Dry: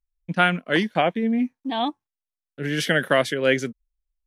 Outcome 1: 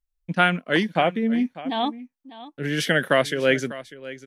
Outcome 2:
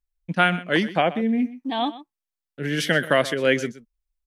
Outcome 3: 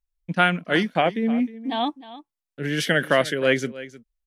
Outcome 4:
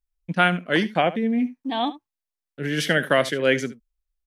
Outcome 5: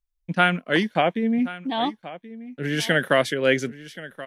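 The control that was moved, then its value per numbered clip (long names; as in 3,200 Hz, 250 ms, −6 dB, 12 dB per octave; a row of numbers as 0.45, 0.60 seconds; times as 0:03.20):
single-tap delay, delay time: 597, 125, 310, 73, 1,078 milliseconds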